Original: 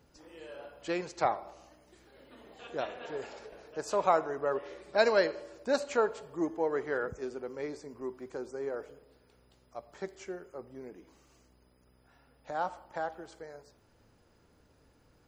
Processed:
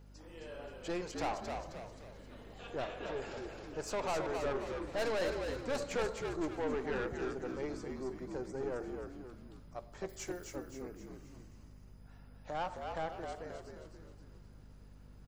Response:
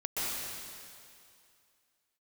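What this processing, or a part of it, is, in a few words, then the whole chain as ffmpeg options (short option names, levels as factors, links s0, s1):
valve amplifier with mains hum: -filter_complex "[0:a]asettb=1/sr,asplit=3[s0][s1][s2];[s0]atrim=end=10.094[s3];[s1]atrim=start=10.09:end=10.56,asetpts=PTS-STARTPTS,afade=t=in:d=0.004:c=qsin,afade=t=out:st=0.466:d=0.004:c=qsin,aemphasis=mode=production:type=75fm[s4];[s2]atrim=start=10.556[s5];[s3][s4]acrossfade=d=0.004:c1=hsin:c2=qsin[s6];[s6][s5]acrossfade=d=0.004:c1=qsin:c2=hsin,aeval=exprs='(tanh(39.8*val(0)+0.4)-tanh(0.4))/39.8':c=same,aeval=exprs='val(0)+0.00178*(sin(2*PI*50*n/s)+sin(2*PI*2*50*n/s)/2+sin(2*PI*3*50*n/s)/3+sin(2*PI*4*50*n/s)/4+sin(2*PI*5*50*n/s)/5)':c=same,asplit=7[s7][s8][s9][s10][s11][s12][s13];[s8]adelay=264,afreqshift=-61,volume=0.562[s14];[s9]adelay=528,afreqshift=-122,volume=0.26[s15];[s10]adelay=792,afreqshift=-183,volume=0.119[s16];[s11]adelay=1056,afreqshift=-244,volume=0.055[s17];[s12]adelay=1320,afreqshift=-305,volume=0.0251[s18];[s13]adelay=1584,afreqshift=-366,volume=0.0116[s19];[s7][s14][s15][s16][s17][s18][s19]amix=inputs=7:normalize=0"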